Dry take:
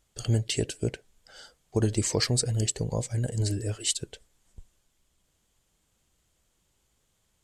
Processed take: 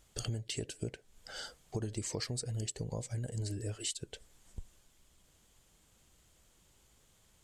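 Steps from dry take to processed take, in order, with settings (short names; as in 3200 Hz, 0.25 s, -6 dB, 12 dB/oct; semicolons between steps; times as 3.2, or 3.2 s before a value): compressor 5:1, threshold -42 dBFS, peak gain reduction 19.5 dB; gain +5 dB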